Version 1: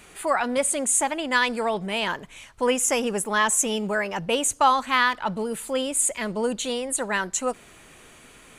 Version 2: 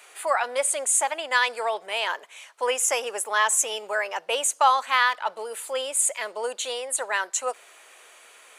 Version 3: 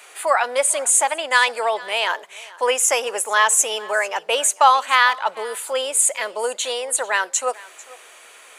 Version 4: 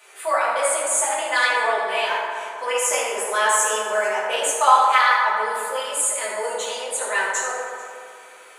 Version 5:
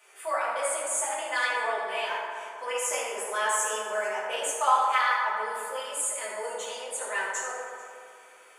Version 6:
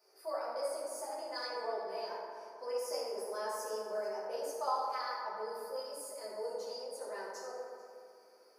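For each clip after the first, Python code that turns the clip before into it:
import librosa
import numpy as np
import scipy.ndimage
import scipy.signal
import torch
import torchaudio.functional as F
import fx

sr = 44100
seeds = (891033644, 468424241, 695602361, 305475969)

y1 = scipy.signal.sosfilt(scipy.signal.butter(4, 500.0, 'highpass', fs=sr, output='sos'), x)
y2 = y1 + 10.0 ** (-21.0 / 20.0) * np.pad(y1, (int(445 * sr / 1000.0), 0))[:len(y1)]
y2 = y2 * librosa.db_to_amplitude(5.5)
y3 = fx.rev_fdn(y2, sr, rt60_s=2.3, lf_ratio=1.25, hf_ratio=0.4, size_ms=46.0, drr_db=-8.5)
y3 = y3 * librosa.db_to_amplitude(-10.0)
y4 = fx.notch(y3, sr, hz=4000.0, q=8.4)
y4 = y4 * librosa.db_to_amplitude(-8.0)
y5 = fx.curve_eq(y4, sr, hz=(460.0, 3400.0, 4900.0, 7400.0, 13000.0), db=(0, -26, 9, -25, -3))
y5 = y5 * librosa.db_to_amplitude(-2.5)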